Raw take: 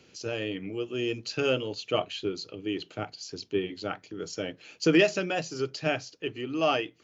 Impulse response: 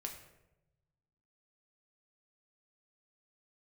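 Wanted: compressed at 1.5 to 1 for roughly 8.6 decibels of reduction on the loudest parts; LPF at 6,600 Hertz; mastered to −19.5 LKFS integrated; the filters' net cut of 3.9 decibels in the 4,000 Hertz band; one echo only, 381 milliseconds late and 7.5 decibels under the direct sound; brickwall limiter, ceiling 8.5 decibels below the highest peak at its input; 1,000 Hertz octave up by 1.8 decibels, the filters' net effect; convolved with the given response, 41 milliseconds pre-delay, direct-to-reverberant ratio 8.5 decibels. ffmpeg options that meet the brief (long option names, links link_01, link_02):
-filter_complex "[0:a]lowpass=6600,equalizer=frequency=1000:width_type=o:gain=3,equalizer=frequency=4000:width_type=o:gain=-5.5,acompressor=threshold=-41dB:ratio=1.5,alimiter=level_in=2.5dB:limit=-24dB:level=0:latency=1,volume=-2.5dB,aecho=1:1:381:0.422,asplit=2[link_01][link_02];[1:a]atrim=start_sample=2205,adelay=41[link_03];[link_02][link_03]afir=irnorm=-1:irlink=0,volume=-6.5dB[link_04];[link_01][link_04]amix=inputs=2:normalize=0,volume=18.5dB"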